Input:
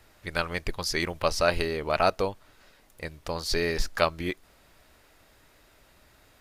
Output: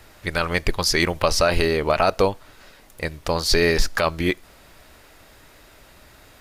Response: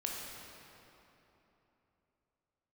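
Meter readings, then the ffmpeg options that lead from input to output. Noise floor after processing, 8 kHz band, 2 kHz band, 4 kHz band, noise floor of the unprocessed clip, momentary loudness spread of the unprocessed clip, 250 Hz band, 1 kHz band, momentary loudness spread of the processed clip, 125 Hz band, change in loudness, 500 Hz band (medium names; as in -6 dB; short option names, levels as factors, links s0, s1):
-51 dBFS, +9.5 dB, +7.0 dB, +8.0 dB, -60 dBFS, 11 LU, +8.5 dB, +5.5 dB, 11 LU, +8.5 dB, +7.0 dB, +6.5 dB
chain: -filter_complex "[0:a]alimiter=limit=0.168:level=0:latency=1:release=33,asplit=2[s0][s1];[1:a]atrim=start_sample=2205,atrim=end_sample=4410[s2];[s1][s2]afir=irnorm=-1:irlink=0,volume=0.0631[s3];[s0][s3]amix=inputs=2:normalize=0,volume=2.82"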